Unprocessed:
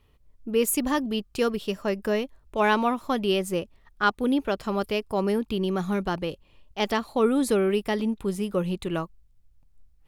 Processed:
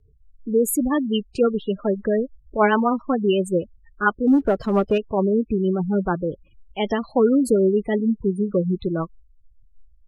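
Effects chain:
gate on every frequency bin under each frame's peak −15 dB strong
0:04.27–0:04.98: leveller curve on the samples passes 1
rotating-speaker cabinet horn 7.5 Hz
level +7 dB

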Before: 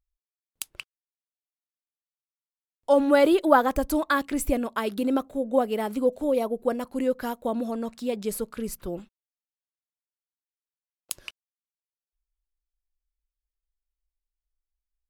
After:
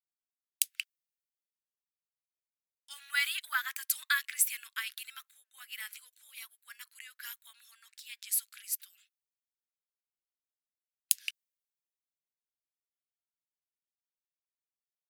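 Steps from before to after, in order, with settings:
Butterworth high-pass 1,700 Hz 36 dB per octave
high-shelf EQ 11,000 Hz +7.5 dB
multiband upward and downward expander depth 40%

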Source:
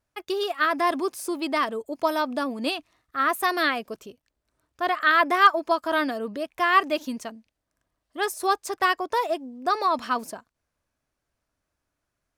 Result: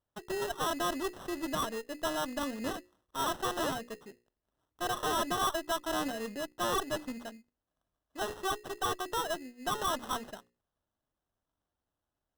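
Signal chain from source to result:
high-shelf EQ 11,000 Hz −10 dB
mains-hum notches 60/120/180/240/300/360/420/480/540 Hz
tube saturation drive 23 dB, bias 0.6
sample-rate reduction 2,300 Hz, jitter 0%
level −4 dB

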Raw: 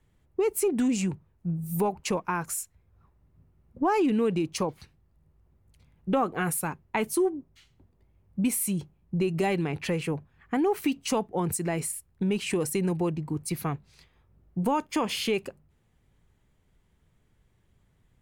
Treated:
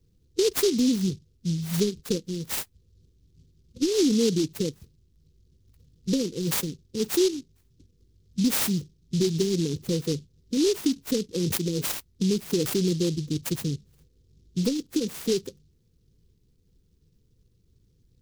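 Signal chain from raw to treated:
spectral magnitudes quantised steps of 15 dB
linear-phase brick-wall band-stop 530–8,000 Hz
high-shelf EQ 11,000 Hz +7 dB
short delay modulated by noise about 4,600 Hz, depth 0.12 ms
level +3 dB

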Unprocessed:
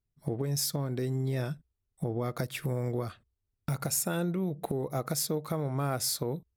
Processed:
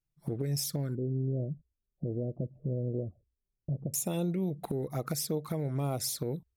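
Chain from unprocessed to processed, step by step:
flanger swept by the level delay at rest 6.2 ms, full sweep at −26.5 dBFS
0:00.95–0:03.94: elliptic low-pass filter 600 Hz, stop band 60 dB

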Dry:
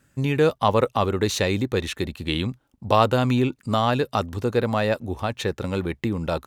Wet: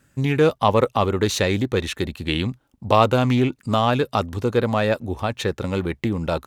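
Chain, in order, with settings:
highs frequency-modulated by the lows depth 0.12 ms
level +2 dB

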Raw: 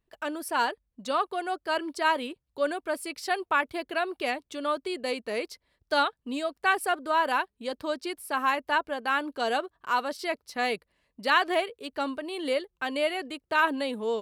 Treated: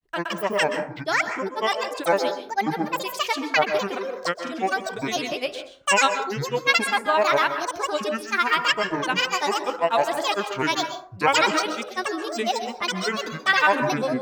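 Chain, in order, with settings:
dynamic equaliser 3,200 Hz, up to +4 dB, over −40 dBFS, Q 0.77
granular cloud, pitch spread up and down by 12 semitones
dense smooth reverb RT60 0.52 s, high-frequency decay 0.45×, pre-delay 115 ms, DRR 7.5 dB
level +4.5 dB

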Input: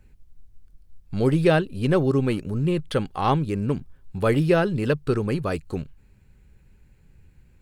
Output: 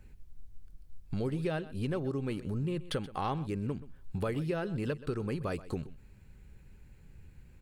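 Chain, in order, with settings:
downward compressor 5 to 1, threshold −32 dBFS, peak gain reduction 17 dB
on a send: single-tap delay 127 ms −17 dB

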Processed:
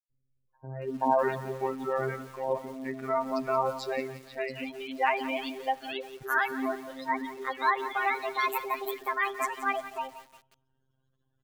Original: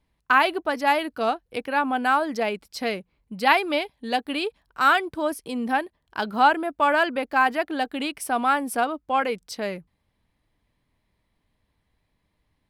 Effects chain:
gliding playback speed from 53% → 169%
in parallel at −3 dB: brickwall limiter −14 dBFS, peak gain reduction 10.5 dB
on the sum: dynamic equaliser 1,400 Hz, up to −3 dB, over −26 dBFS, Q 1.8
gate on every frequency bin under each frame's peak −20 dB strong
three-band delay without the direct sound highs, lows, mids 100/480 ms, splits 370/3,000 Hz
phases set to zero 132 Hz
on a send at −20 dB: convolution reverb RT60 1.0 s, pre-delay 27 ms
on the sum: feedback echo at a low word length 175 ms, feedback 55%, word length 6 bits, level −13 dB
level −6 dB

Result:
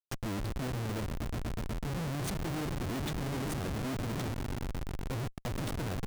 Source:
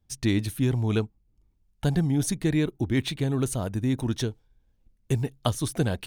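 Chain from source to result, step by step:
0:03.56–0:04.08: bit-depth reduction 6 bits, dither none
echo that builds up and dies away 122 ms, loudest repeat 5, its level −16 dB
comparator with hysteresis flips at −28.5 dBFS
level −8 dB

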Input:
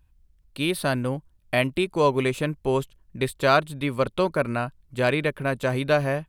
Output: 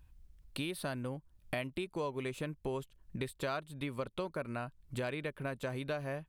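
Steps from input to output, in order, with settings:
downward compressor 4 to 1, threshold −39 dBFS, peak gain reduction 20.5 dB
level +1 dB

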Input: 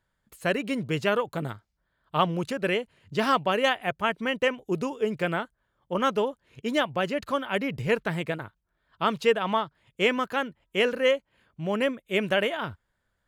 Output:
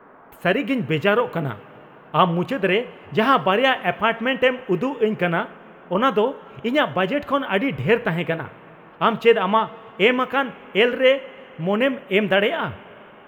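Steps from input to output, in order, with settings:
noise in a band 150–1,400 Hz −55 dBFS
flat-topped bell 6,700 Hz −13 dB
coupled-rooms reverb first 0.39 s, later 4.1 s, from −18 dB, DRR 12 dB
level +6.5 dB

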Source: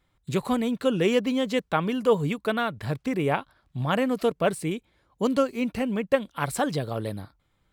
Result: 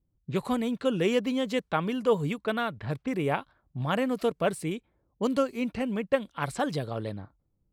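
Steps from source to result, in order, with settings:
low-pass that shuts in the quiet parts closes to 310 Hz, open at −23.5 dBFS
level −3 dB

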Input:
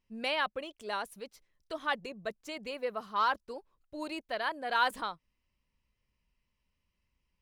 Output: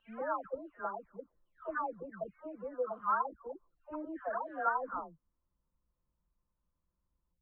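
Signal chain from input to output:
every frequency bin delayed by itself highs early, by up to 656 ms
elliptic low-pass filter 1,400 Hz, stop band 80 dB

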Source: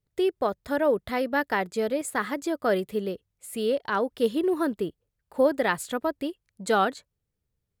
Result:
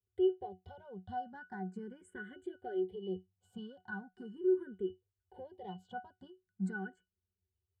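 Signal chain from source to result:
downward compressor 4 to 1, threshold −34 dBFS, peak gain reduction 15 dB
leveller curve on the samples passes 1
parametric band 8,400 Hz +11.5 dB 0.42 octaves
resonances in every octave F#, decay 0.17 s
frequency shifter mixed with the dry sound +0.4 Hz
level +6 dB

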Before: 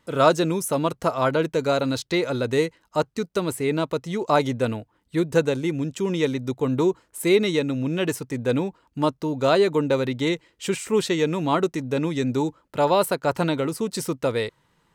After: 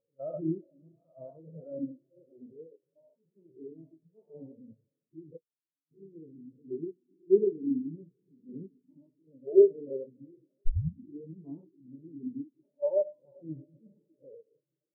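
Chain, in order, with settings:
spectrum averaged block by block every 200 ms
high-shelf EQ 2,000 Hz −9.5 dB
feedback delay with all-pass diffusion 1,123 ms, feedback 46%, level −10.5 dB
four-comb reverb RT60 3.1 s, combs from 25 ms, DRR 5.5 dB
0:05.37–0:05.91: output level in coarse steps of 21 dB
0:10.66: tape start 0.55 s
mains-hum notches 60/120/180/240/300/360/420/480 Hz
every bin expanded away from the loudest bin 4 to 1

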